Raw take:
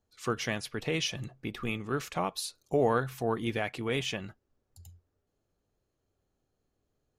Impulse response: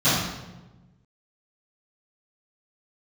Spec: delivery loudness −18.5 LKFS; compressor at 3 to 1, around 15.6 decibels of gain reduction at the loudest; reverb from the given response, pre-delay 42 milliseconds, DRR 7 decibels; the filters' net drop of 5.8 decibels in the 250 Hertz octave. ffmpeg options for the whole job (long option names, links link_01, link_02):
-filter_complex "[0:a]equalizer=frequency=250:width_type=o:gain=-8,acompressor=threshold=-46dB:ratio=3,asplit=2[link_01][link_02];[1:a]atrim=start_sample=2205,adelay=42[link_03];[link_02][link_03]afir=irnorm=-1:irlink=0,volume=-26dB[link_04];[link_01][link_04]amix=inputs=2:normalize=0,volume=26.5dB"